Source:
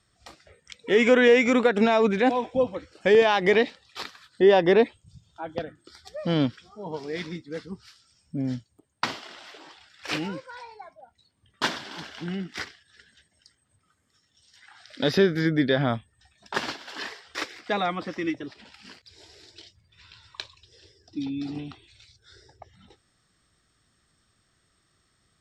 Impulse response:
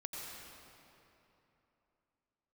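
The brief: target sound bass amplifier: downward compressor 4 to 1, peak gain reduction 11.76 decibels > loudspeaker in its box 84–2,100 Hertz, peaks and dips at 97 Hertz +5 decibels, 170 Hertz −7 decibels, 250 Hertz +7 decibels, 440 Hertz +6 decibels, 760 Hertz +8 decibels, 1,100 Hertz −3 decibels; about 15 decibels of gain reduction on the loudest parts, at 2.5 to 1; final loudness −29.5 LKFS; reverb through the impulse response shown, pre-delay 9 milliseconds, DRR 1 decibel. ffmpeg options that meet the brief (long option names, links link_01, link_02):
-filter_complex "[0:a]acompressor=threshold=-37dB:ratio=2.5,asplit=2[link_01][link_02];[1:a]atrim=start_sample=2205,adelay=9[link_03];[link_02][link_03]afir=irnorm=-1:irlink=0,volume=-0.5dB[link_04];[link_01][link_04]amix=inputs=2:normalize=0,acompressor=threshold=-38dB:ratio=4,highpass=frequency=84:width=0.5412,highpass=frequency=84:width=1.3066,equalizer=frequency=97:width_type=q:width=4:gain=5,equalizer=frequency=170:width_type=q:width=4:gain=-7,equalizer=frequency=250:width_type=q:width=4:gain=7,equalizer=frequency=440:width_type=q:width=4:gain=6,equalizer=frequency=760:width_type=q:width=4:gain=8,equalizer=frequency=1100:width_type=q:width=4:gain=-3,lowpass=frequency=2100:width=0.5412,lowpass=frequency=2100:width=1.3066,volume=10dB"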